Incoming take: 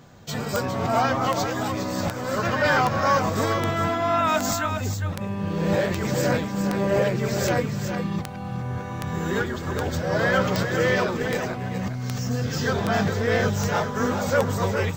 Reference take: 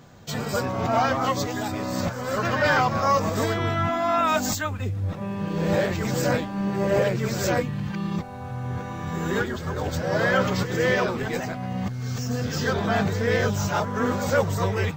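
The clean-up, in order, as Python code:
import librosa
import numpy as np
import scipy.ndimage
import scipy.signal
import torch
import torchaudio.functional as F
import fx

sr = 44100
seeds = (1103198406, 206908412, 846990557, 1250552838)

y = fx.fix_declick_ar(x, sr, threshold=10.0)
y = fx.fix_echo_inverse(y, sr, delay_ms=408, level_db=-8.0)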